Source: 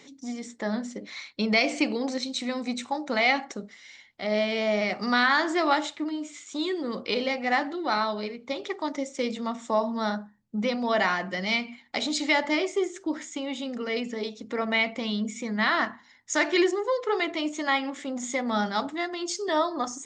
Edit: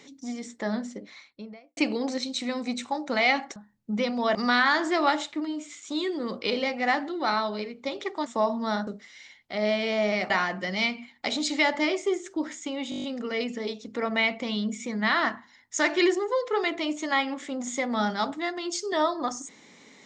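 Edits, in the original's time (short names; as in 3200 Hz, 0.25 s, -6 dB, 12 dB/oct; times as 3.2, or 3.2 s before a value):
0.68–1.77 studio fade out
3.56–4.99 swap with 10.21–11
8.9–9.6 cut
13.6 stutter 0.02 s, 8 plays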